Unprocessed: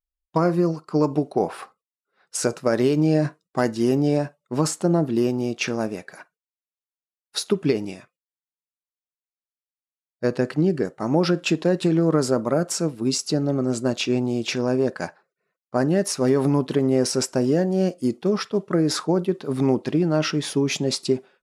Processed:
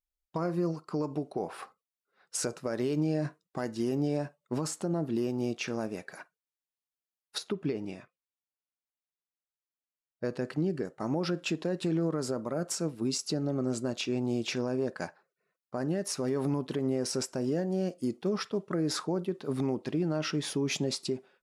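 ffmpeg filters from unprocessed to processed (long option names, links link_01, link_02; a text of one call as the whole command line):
ffmpeg -i in.wav -filter_complex "[0:a]asettb=1/sr,asplit=3[link_01][link_02][link_03];[link_01]atrim=end=7.384[link_04];[link_02]atrim=start=7.38:end=10.25,asetpts=PTS-STARTPTS,afade=type=in:duration=0.004:curve=qsin,afade=type=out:start_time=2.866:duration=0.004:curve=qsin,lowpass=frequency=2900:poles=1[link_05];[link_03]atrim=start=10.246[link_06];[link_04][link_05]acrossfade=duration=0.004:curve1=hsin:curve2=qsin[link_07];[link_07][link_06]acrossfade=duration=0.004:curve1=qsin:curve2=hsin,alimiter=limit=-18dB:level=0:latency=1:release=305,volume=-3.5dB" out.wav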